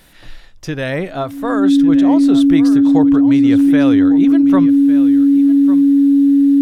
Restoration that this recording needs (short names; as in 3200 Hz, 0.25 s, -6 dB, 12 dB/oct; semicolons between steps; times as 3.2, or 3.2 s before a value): notch 280 Hz, Q 30; inverse comb 1.152 s -14 dB